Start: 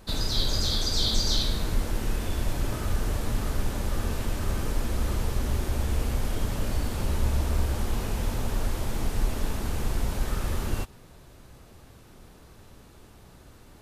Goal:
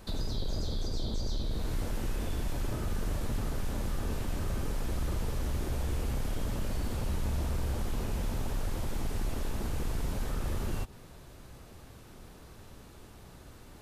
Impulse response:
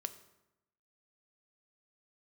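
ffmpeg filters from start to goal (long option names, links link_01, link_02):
-filter_complex "[0:a]acrossover=split=780[link_01][link_02];[link_01]asoftclip=type=tanh:threshold=-27.5dB[link_03];[link_02]acompressor=threshold=-44dB:ratio=10[link_04];[link_03][link_04]amix=inputs=2:normalize=0"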